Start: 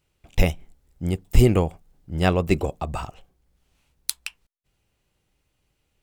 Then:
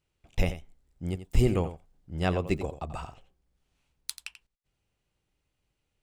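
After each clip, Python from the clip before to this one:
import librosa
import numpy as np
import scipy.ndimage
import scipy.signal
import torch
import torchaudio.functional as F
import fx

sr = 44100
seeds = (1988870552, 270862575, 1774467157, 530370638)

y = fx.peak_eq(x, sr, hz=16000.0, db=-12.0, octaves=0.5)
y = y + 10.0 ** (-12.0 / 20.0) * np.pad(y, (int(87 * sr / 1000.0), 0))[:len(y)]
y = y * librosa.db_to_amplitude(-7.5)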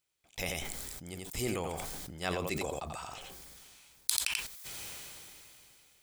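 y = fx.tilt_eq(x, sr, slope=3.5)
y = fx.notch(y, sr, hz=2800.0, q=13.0)
y = fx.sustainer(y, sr, db_per_s=20.0)
y = y * librosa.db_to_amplitude(-5.5)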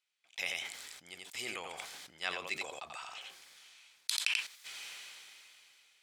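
y = fx.bandpass_q(x, sr, hz=2600.0, q=0.9)
y = y * librosa.db_to_amplitude(3.0)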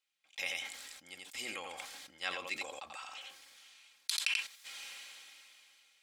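y = x + 0.54 * np.pad(x, (int(3.7 * sr / 1000.0), 0))[:len(x)]
y = y * librosa.db_to_amplitude(-2.0)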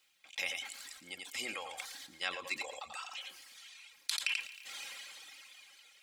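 y = fx.dereverb_blind(x, sr, rt60_s=1.3)
y = fx.echo_thinned(y, sr, ms=113, feedback_pct=56, hz=490.0, wet_db=-16)
y = fx.band_squash(y, sr, depth_pct=40)
y = y * librosa.db_to_amplitude(2.5)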